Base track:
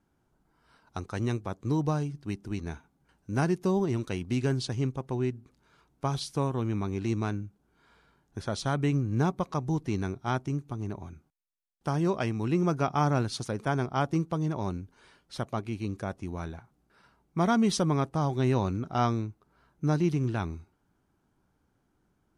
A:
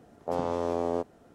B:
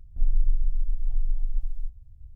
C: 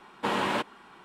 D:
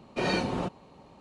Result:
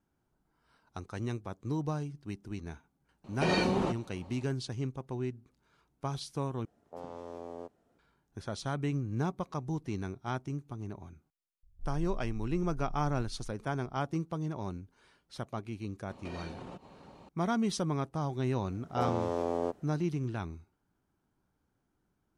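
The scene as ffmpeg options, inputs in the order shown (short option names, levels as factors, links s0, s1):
-filter_complex "[4:a]asplit=2[s0][s1];[1:a]asplit=2[s2][s3];[0:a]volume=0.501[s4];[s1]acompressor=threshold=0.00794:ratio=6:attack=3.2:release=140:knee=1:detection=peak[s5];[s4]asplit=2[s6][s7];[s6]atrim=end=6.654[s8];[s2]atrim=end=1.34,asetpts=PTS-STARTPTS,volume=0.188[s9];[s7]atrim=start=7.986[s10];[s0]atrim=end=1.2,asetpts=PTS-STARTPTS,volume=0.891,afade=t=in:d=0.004:c=hsin,afade=t=out:st=1.196:d=0.004:c=hsin,adelay=3240[s11];[2:a]atrim=end=2.35,asetpts=PTS-STARTPTS,volume=0.141,afade=t=in:d=0.004:c=hsin,afade=t=out:st=2.346:d=0.004:c=hsin,adelay=11630[s12];[s5]atrim=end=1.2,asetpts=PTS-STARTPTS,volume=0.944,afade=t=in:d=0.004:c=hsin,afade=t=out:st=1.196:d=0.004:c=hsin,adelay=16090[s13];[s3]atrim=end=1.34,asetpts=PTS-STARTPTS,volume=0.708,afade=t=in:d=0.004:c=hsin,afade=t=out:st=1.336:d=0.004:c=hsin,adelay=18690[s14];[s8][s9]acrossfade=d=0.004:c1=hsin:c2=hsin[s15];[s15][s10]acrossfade=d=0.004:c1=hsin:c2=hsin[s16];[s16][s11][s12][s13][s14]amix=inputs=5:normalize=0"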